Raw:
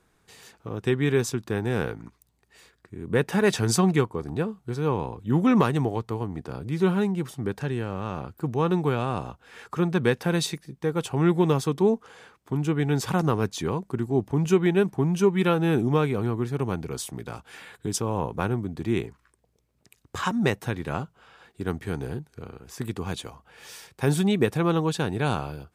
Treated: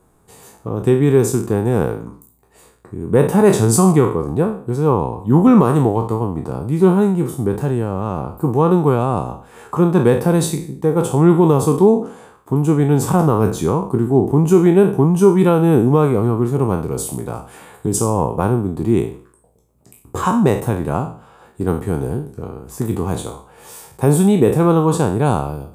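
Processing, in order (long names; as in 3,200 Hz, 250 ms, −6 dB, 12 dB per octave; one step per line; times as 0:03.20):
peak hold with a decay on every bin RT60 0.46 s
flat-topped bell 3,000 Hz −12.5 dB 2.3 octaves
boost into a limiter +10.5 dB
level −1 dB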